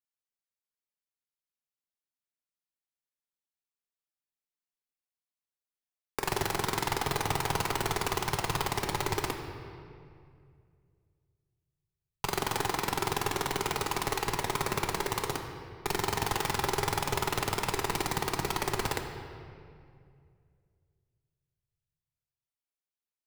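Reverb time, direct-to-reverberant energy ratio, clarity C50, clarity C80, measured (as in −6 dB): 2.3 s, 3.5 dB, 6.0 dB, 7.0 dB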